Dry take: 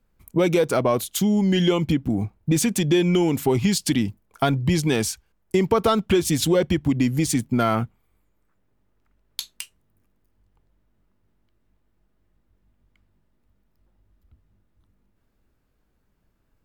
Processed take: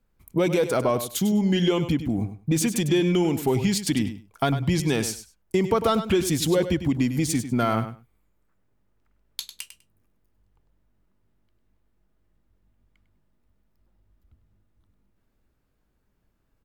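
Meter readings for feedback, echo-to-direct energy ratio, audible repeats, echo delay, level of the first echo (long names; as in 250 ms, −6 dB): 16%, −11.0 dB, 2, 100 ms, −11.0 dB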